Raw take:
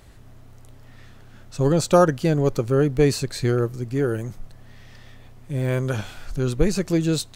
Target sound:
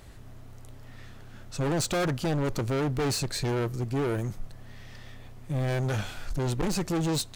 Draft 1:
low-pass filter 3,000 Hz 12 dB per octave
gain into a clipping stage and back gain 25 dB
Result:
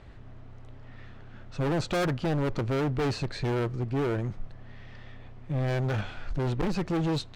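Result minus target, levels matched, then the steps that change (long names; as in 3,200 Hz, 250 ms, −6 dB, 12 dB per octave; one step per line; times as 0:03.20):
4,000 Hz band −4.0 dB
remove: low-pass filter 3,000 Hz 12 dB per octave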